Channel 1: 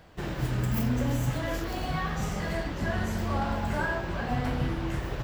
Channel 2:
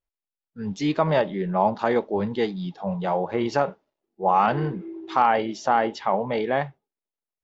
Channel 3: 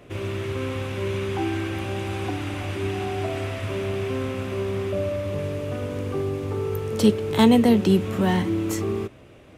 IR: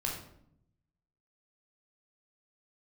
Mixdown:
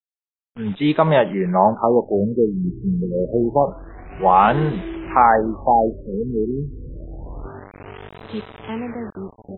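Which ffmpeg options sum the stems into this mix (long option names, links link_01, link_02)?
-filter_complex "[0:a]asubboost=boost=4.5:cutoff=62,asoftclip=type=tanh:threshold=-25.5dB,adelay=2250,volume=-10dB[link_01];[1:a]acrusher=bits=8:dc=4:mix=0:aa=0.000001,volume=2dB[link_02];[2:a]adynamicequalizer=threshold=0.0355:dfrequency=170:dqfactor=0.88:tfrequency=170:tqfactor=0.88:attack=5:release=100:ratio=0.375:range=2.5:mode=cutabove:tftype=bell,acrusher=bits=3:mix=0:aa=0.000001,adelay=1300,volume=-19.5dB[link_03];[link_01][link_02][link_03]amix=inputs=3:normalize=0,dynaudnorm=framelen=120:gausssize=9:maxgain=8.5dB,afftfilt=real='re*lt(b*sr/1024,430*pow(4100/430,0.5+0.5*sin(2*PI*0.27*pts/sr)))':imag='im*lt(b*sr/1024,430*pow(4100/430,0.5+0.5*sin(2*PI*0.27*pts/sr)))':win_size=1024:overlap=0.75"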